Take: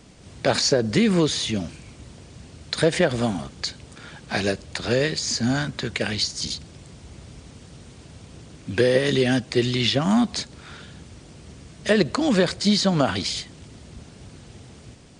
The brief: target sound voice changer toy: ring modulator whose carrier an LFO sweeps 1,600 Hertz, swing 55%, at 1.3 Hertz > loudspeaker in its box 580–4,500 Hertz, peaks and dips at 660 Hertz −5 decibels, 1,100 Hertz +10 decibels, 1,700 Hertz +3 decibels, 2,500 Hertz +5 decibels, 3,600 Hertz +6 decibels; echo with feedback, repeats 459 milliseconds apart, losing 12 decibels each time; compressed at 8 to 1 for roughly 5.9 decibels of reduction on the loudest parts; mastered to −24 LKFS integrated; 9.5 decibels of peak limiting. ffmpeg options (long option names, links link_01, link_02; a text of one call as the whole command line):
ffmpeg -i in.wav -af "acompressor=threshold=-20dB:ratio=8,alimiter=limit=-17dB:level=0:latency=1,aecho=1:1:459|918|1377:0.251|0.0628|0.0157,aeval=exprs='val(0)*sin(2*PI*1600*n/s+1600*0.55/1.3*sin(2*PI*1.3*n/s))':channel_layout=same,highpass=580,equalizer=frequency=660:width_type=q:width=4:gain=-5,equalizer=frequency=1100:width_type=q:width=4:gain=10,equalizer=frequency=1700:width_type=q:width=4:gain=3,equalizer=frequency=2500:width_type=q:width=4:gain=5,equalizer=frequency=3600:width_type=q:width=4:gain=6,lowpass=frequency=4500:width=0.5412,lowpass=frequency=4500:width=1.3066,volume=2dB" out.wav